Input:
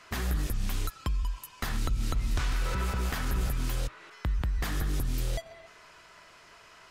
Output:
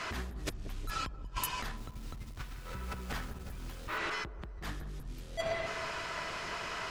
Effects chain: treble shelf 8.7 kHz -11 dB; peak limiter -32.5 dBFS, peak gain reduction 11 dB; compressor with a negative ratio -44 dBFS, ratio -0.5; 1.77–3.98 s: companded quantiser 6-bit; feedback echo behind a low-pass 182 ms, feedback 55%, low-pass 590 Hz, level -8 dB; trim +7.5 dB

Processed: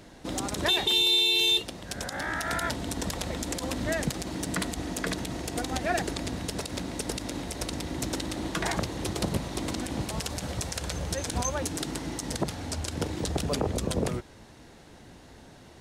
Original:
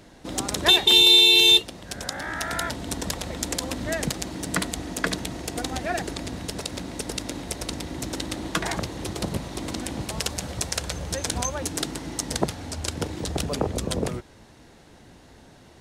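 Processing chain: peak limiter -16 dBFS, peak gain reduction 9.5 dB

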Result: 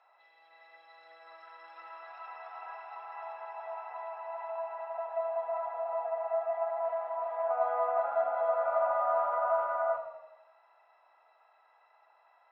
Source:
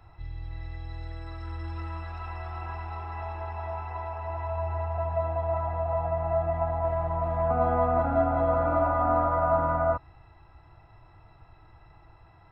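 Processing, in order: Chebyshev high-pass 560 Hz, order 4; distance through air 120 m; on a send: tape echo 81 ms, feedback 64%, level -9 dB, low-pass 2.2 kHz; on the sum: trim -4 dB

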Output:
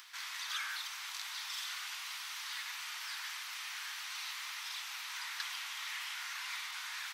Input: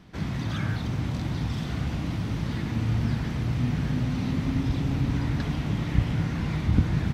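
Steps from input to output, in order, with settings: steep high-pass 970 Hz 36 dB/octave; tilt EQ +4 dB/octave; upward compressor, threshold -44 dBFS; trim -4.5 dB

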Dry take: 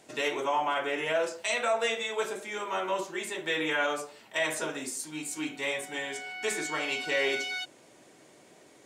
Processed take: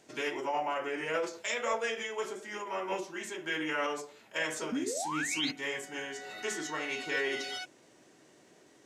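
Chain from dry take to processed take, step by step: painted sound rise, 4.72–5.51 s, 230–5100 Hz -26 dBFS; formant shift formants -2 st; trim -4 dB

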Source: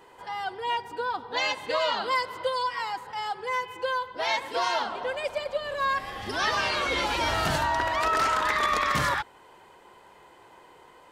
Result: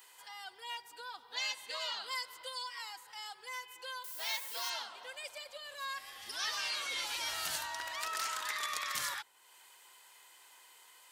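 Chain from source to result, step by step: 4.04–4.70 s: word length cut 8-bit, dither triangular; pre-emphasis filter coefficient 0.97; tape noise reduction on one side only encoder only

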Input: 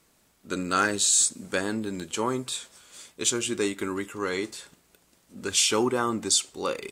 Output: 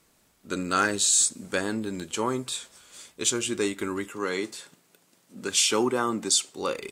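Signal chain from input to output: 4.10–6.59 s: high-pass 120 Hz 24 dB/octave

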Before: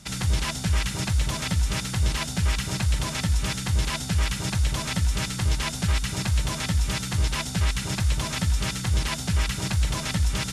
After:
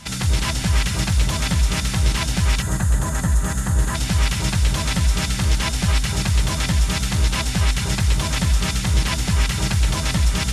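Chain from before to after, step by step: two-band feedback delay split 1.6 kHz, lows 225 ms, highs 133 ms, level -8.5 dB; time-frequency box 2.62–3.95 s, 2–6.2 kHz -12 dB; reverse echo 455 ms -23 dB; trim +4.5 dB

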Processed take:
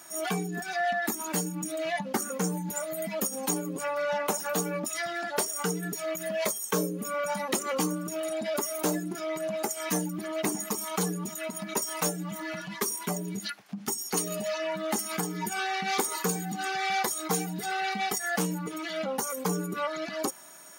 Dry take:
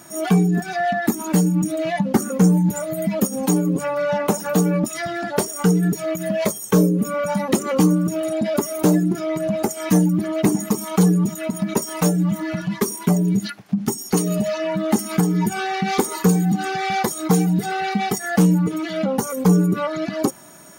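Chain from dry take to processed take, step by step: high-pass 930 Hz 6 dB/octave; trim -3 dB

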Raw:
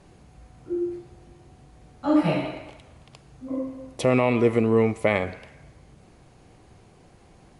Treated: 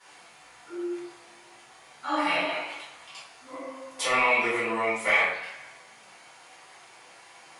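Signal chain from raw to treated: high-pass 1.1 kHz 12 dB/octave; in parallel at 0 dB: compression, threshold -46 dBFS, peak gain reduction 21.5 dB; on the sum: chorus voices 2, 0.99 Hz, delay 15 ms, depth 3 ms; saturation -18 dBFS, distortion -25 dB; reverberation RT60 0.60 s, pre-delay 3 ms, DRR -11.5 dB; trim -3.5 dB

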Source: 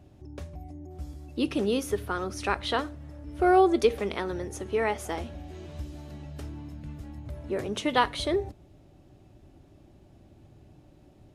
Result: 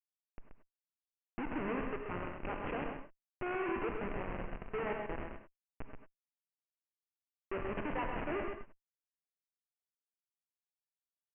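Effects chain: Schmitt trigger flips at -28 dBFS; steep low-pass 2.8 kHz 96 dB/octave; peaking EQ 72 Hz -12 dB 2.2 oct; on a send: delay 130 ms -5.5 dB; on the sum: gated-style reverb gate 120 ms rising, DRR 6 dB; trim -4.5 dB

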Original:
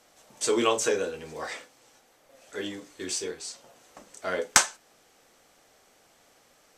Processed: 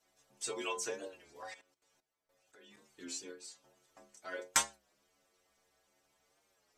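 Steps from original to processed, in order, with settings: harmonic-percussive split harmonic -18 dB; inharmonic resonator 66 Hz, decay 0.44 s, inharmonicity 0.008; 1.54–2.77 s: level held to a coarse grid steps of 15 dB; warped record 33 1/3 rpm, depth 100 cents

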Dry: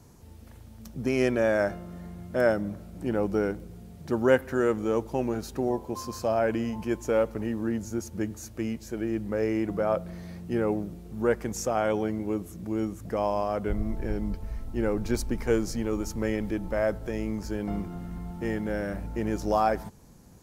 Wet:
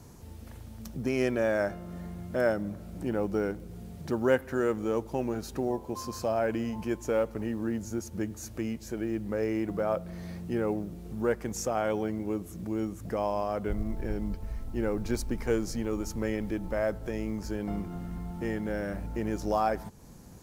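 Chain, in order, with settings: in parallel at +3 dB: compression, threshold -41 dBFS, peak gain reduction 23 dB; on the sum: companded quantiser 8-bit; trim -4.5 dB

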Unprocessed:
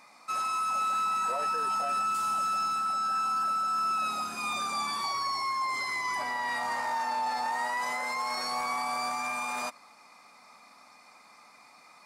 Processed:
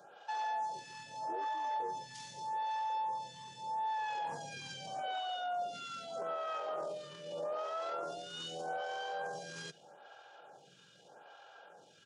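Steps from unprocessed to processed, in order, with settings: steep high-pass 150 Hz 96 dB/octave; peak limiter -30.5 dBFS, peak gain reduction 8.5 dB; pitch shift -7 st; lamp-driven phase shifter 0.81 Hz; trim +1 dB

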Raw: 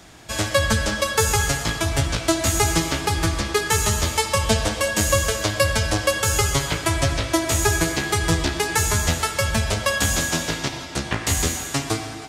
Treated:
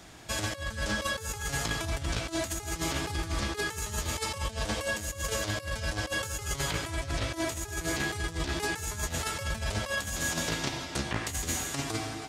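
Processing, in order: compressor with a negative ratio -24 dBFS, ratio -0.5; trim -7.5 dB

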